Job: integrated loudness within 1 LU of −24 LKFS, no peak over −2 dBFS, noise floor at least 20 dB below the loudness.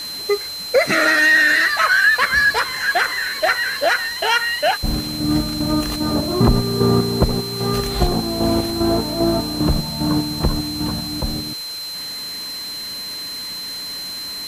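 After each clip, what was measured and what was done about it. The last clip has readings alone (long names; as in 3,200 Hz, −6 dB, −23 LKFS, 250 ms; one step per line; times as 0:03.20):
interfering tone 4,100 Hz; level of the tone −27 dBFS; background noise floor −29 dBFS; target noise floor −39 dBFS; integrated loudness −18.5 LKFS; sample peak −3.5 dBFS; target loudness −24.0 LKFS
→ notch filter 4,100 Hz, Q 30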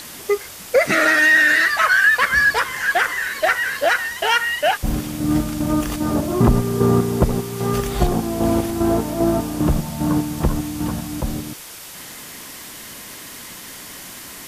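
interfering tone none found; background noise floor −37 dBFS; target noise floor −38 dBFS
→ broadband denoise 6 dB, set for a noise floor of −37 dBFS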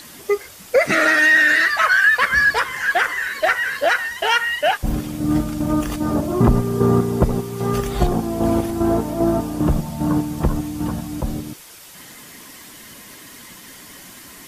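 background noise floor −41 dBFS; integrated loudness −18.5 LKFS; sample peak −4.0 dBFS; target loudness −24.0 LKFS
→ level −5.5 dB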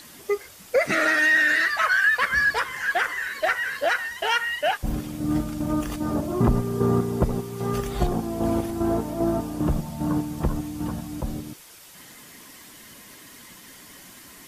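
integrated loudness −24.0 LKFS; sample peak −9.5 dBFS; background noise floor −47 dBFS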